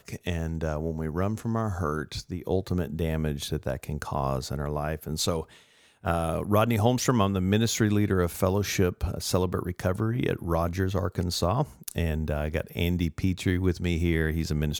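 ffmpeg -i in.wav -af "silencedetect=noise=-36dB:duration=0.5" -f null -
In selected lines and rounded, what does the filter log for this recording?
silence_start: 5.43
silence_end: 6.05 | silence_duration: 0.62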